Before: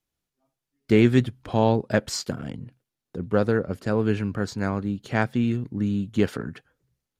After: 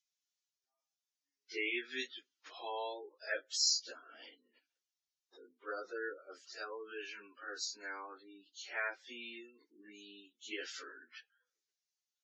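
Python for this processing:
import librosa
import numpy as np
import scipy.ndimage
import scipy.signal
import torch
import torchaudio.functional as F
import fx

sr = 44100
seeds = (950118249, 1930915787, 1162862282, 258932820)

y = scipy.signal.sosfilt(scipy.signal.ellip(3, 1.0, 40, [310.0, 6200.0], 'bandpass', fs=sr, output='sos'), x)
y = np.diff(y, prepend=0.0)
y = fx.spec_gate(y, sr, threshold_db=-15, keep='strong')
y = fx.stretch_vocoder_free(y, sr, factor=1.7)
y = y * 10.0 ** (6.0 / 20.0)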